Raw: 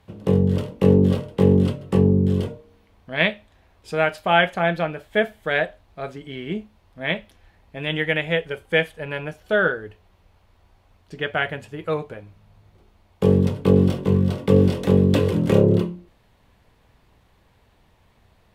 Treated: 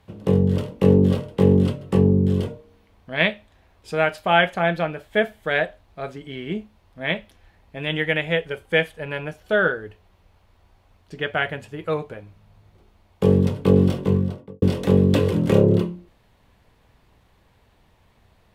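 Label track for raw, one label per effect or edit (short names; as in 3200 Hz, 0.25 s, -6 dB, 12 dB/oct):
14.010000	14.620000	studio fade out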